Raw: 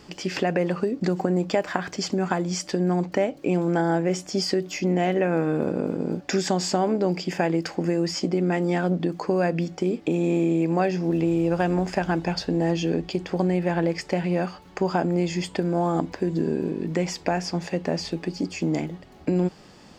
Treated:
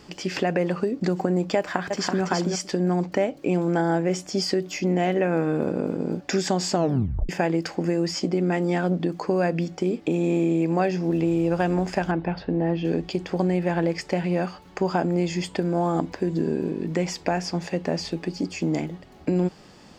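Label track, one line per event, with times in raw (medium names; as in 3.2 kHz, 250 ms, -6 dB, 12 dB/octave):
1.570000	2.220000	echo throw 330 ms, feedback 15%, level -3.5 dB
6.750000	6.750000	tape stop 0.54 s
12.110000	12.850000	distance through air 360 m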